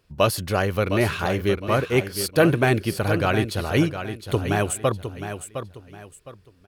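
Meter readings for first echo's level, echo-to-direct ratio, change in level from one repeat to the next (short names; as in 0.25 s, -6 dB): -9.5 dB, -9.0 dB, -10.5 dB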